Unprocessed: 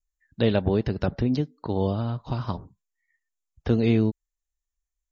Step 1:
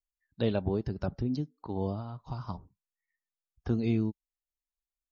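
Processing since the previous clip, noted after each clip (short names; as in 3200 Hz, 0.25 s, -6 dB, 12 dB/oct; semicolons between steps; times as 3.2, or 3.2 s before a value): spectral noise reduction 7 dB; dynamic EQ 2000 Hz, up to -4 dB, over -45 dBFS, Q 1.1; gain -6.5 dB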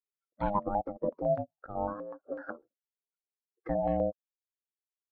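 per-bin expansion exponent 1.5; ring modulator 410 Hz; stepped low-pass 8 Hz 540–1800 Hz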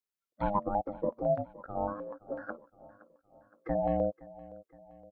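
feedback echo 0.517 s, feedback 52%, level -19.5 dB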